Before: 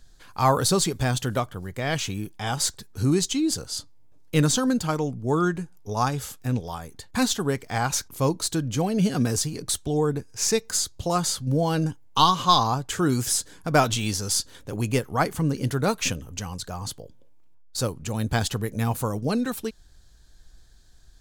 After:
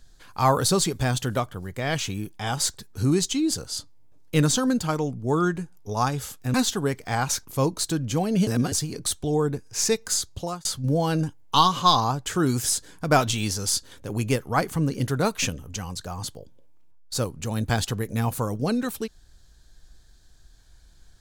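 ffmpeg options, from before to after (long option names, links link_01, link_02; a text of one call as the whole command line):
ffmpeg -i in.wav -filter_complex "[0:a]asplit=5[link_01][link_02][link_03][link_04][link_05];[link_01]atrim=end=6.542[link_06];[link_02]atrim=start=7.168:end=9.102[link_07];[link_03]atrim=start=9.098:end=9.352,asetpts=PTS-STARTPTS,areverse[link_08];[link_04]atrim=start=9.348:end=11.28,asetpts=PTS-STARTPTS,afade=type=out:start_time=1.602:duration=0.33[link_09];[link_05]atrim=start=11.28,asetpts=PTS-STARTPTS,afade=type=in:duration=0.004:curve=hsin[link_10];[link_06][link_07]acrossfade=duration=0.004:curve1=hsin:curve2=hsin[link_11];[link_11][link_08]acrossfade=duration=0.004:curve1=hsin:curve2=hsin[link_12];[link_09][link_10]concat=n=2:v=0:a=1[link_13];[link_12][link_13]acrossfade=duration=0.004:curve1=hsin:curve2=hsin" out.wav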